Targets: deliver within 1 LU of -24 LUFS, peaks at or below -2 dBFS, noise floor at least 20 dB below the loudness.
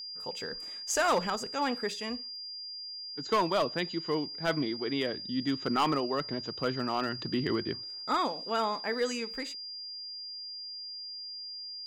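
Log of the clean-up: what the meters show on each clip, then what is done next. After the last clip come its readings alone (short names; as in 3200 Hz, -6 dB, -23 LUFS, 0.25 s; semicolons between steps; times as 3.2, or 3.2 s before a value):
clipped 0.4%; flat tops at -21.0 dBFS; steady tone 4800 Hz; tone level -39 dBFS; loudness -32.5 LUFS; peak -21.0 dBFS; loudness target -24.0 LUFS
-> clip repair -21 dBFS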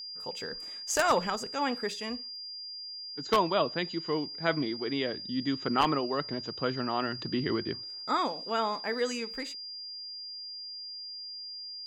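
clipped 0.0%; steady tone 4800 Hz; tone level -39 dBFS
-> notch 4800 Hz, Q 30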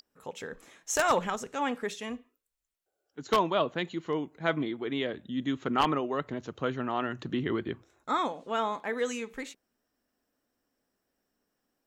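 steady tone none; loudness -31.0 LUFS; peak -11.5 dBFS; loudness target -24.0 LUFS
-> gain +7 dB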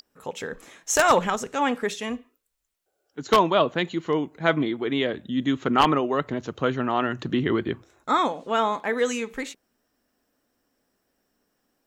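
loudness -24.0 LUFS; peak -4.5 dBFS; noise floor -76 dBFS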